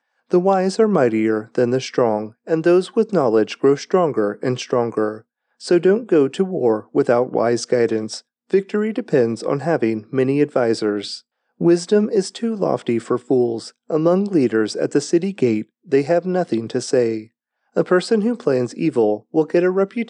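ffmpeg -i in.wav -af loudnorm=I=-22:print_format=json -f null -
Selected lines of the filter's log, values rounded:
"input_i" : "-19.0",
"input_tp" : "-2.3",
"input_lra" : "1.8",
"input_thresh" : "-29.2",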